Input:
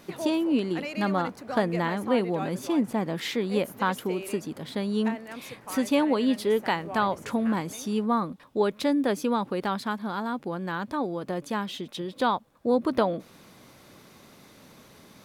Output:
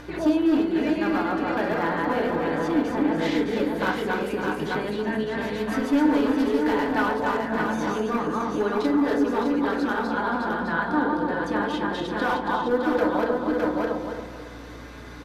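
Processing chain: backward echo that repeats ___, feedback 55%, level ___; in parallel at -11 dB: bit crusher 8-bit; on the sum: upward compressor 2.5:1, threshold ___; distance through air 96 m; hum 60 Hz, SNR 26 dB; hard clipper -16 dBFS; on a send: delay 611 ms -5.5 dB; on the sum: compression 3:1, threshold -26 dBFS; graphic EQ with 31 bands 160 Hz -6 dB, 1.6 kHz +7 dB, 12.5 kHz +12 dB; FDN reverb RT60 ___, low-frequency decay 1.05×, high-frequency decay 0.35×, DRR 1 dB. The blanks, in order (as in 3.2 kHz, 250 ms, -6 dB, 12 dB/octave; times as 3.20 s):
138 ms, -1 dB, -41 dBFS, 0.48 s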